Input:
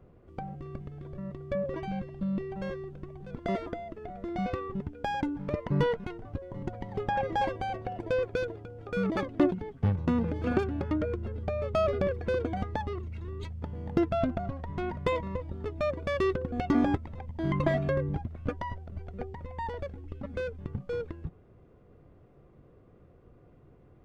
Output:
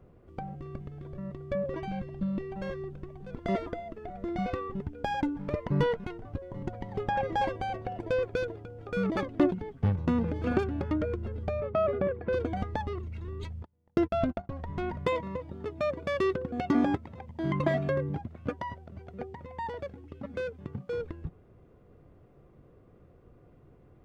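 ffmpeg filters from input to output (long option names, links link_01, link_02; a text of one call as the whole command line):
ffmpeg -i in.wav -filter_complex "[0:a]asplit=3[link_01][link_02][link_03];[link_01]afade=type=out:start_time=1.87:duration=0.02[link_04];[link_02]aphaser=in_gain=1:out_gain=1:delay=4.4:decay=0.23:speed=1.4:type=sinusoidal,afade=type=in:start_time=1.87:duration=0.02,afade=type=out:start_time=5.66:duration=0.02[link_05];[link_03]afade=type=in:start_time=5.66:duration=0.02[link_06];[link_04][link_05][link_06]amix=inputs=3:normalize=0,asettb=1/sr,asplit=3[link_07][link_08][link_09];[link_07]atrim=end=11.604[link_10];[link_08]atrim=start=11.6:end=12.33,asetpts=PTS-STARTPTS,afade=type=in:duration=0.004:curve=qsin,afade=type=out:start_time=0.726:duration=0.004:curve=qsin,highpass=110,lowpass=2000[link_11];[link_09]atrim=start=12.326[link_12];[link_10][link_11]acrossfade=duration=0.004:curve1=hsin:curve2=qsin[link_13];[link_13][link_12]acrossfade=duration=0.004:curve1=qsin:curve2=hsin,asplit=3[link_14][link_15][link_16];[link_14]afade=type=out:start_time=13.62:duration=0.02[link_17];[link_15]agate=range=-36dB:threshold=-32dB:ratio=16:release=100:detection=peak,afade=type=in:start_time=13.62:duration=0.02,afade=type=out:start_time=14.49:duration=0.02[link_18];[link_16]afade=type=in:start_time=14.49:duration=0.02[link_19];[link_17][link_18][link_19]amix=inputs=3:normalize=0,asettb=1/sr,asplit=3[link_20][link_21][link_22];[link_20]atrim=end=15.054[link_23];[link_21]atrim=start=15.05:end=20.98,asetpts=PTS-STARTPTS,afade=type=in:duration=0.004:curve=qsin,afade=type=out:start_time=5.926:duration=0.004:curve=qsin,highpass=110[link_24];[link_22]atrim=start=20.976[link_25];[link_23][link_24]acrossfade=duration=0.004:curve1=hsin:curve2=qsin[link_26];[link_26][link_25]acrossfade=duration=0.004:curve1=qsin:curve2=hsin" out.wav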